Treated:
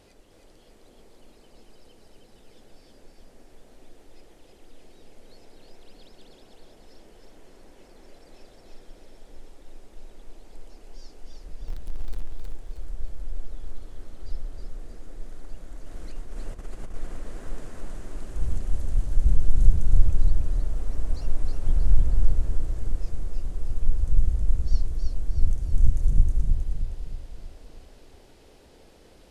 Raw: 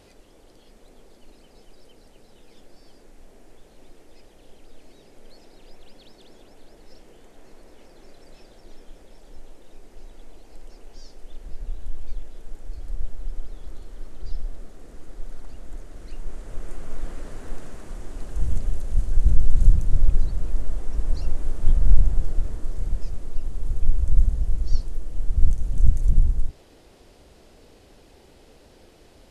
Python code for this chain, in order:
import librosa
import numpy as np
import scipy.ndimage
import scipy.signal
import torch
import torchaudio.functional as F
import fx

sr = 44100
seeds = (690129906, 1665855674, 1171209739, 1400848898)

p1 = fx.zero_step(x, sr, step_db=-32.0, at=(11.67, 12.26))
p2 = fx.over_compress(p1, sr, threshold_db=-28.0, ratio=-1.0, at=(15.86, 16.94))
p3 = p2 + fx.echo_feedback(p2, sr, ms=315, feedback_pct=48, wet_db=-3.5, dry=0)
p4 = fx.quant_dither(p3, sr, seeds[0], bits=12, dither='triangular', at=(20.68, 21.24))
y = p4 * 10.0 ** (-3.5 / 20.0)